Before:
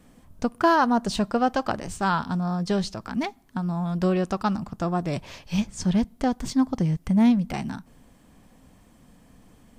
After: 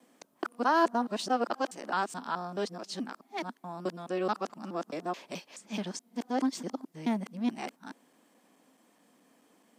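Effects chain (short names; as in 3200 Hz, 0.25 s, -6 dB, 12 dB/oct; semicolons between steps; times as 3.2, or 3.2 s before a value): local time reversal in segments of 0.214 s; HPF 260 Hz 24 dB/oct; gain -5.5 dB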